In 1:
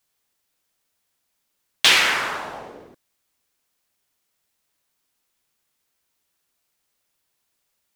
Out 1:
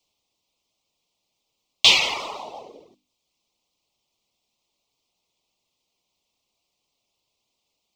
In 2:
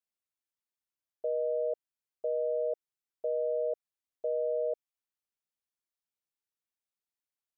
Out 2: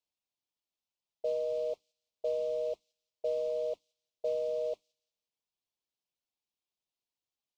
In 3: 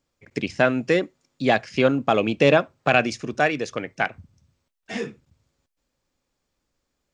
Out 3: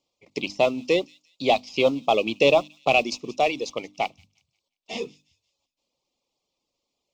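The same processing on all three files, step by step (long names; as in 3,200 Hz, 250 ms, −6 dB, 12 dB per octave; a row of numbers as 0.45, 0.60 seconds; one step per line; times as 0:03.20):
RIAA equalisation recording
reverb reduction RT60 0.69 s
mains-hum notches 50/100/150/200/250/300 Hz
noise that follows the level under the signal 16 dB
in parallel at −7.5 dB: hard clipping −12 dBFS
on the sum: Butterworth band-reject 1,600 Hz, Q 1.1
high-frequency loss of the air 180 metres
delay with a high-pass on its return 177 ms, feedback 35%, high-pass 4,500 Hz, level −17 dB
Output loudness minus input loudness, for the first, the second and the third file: 0.0, −1.5, −1.5 LU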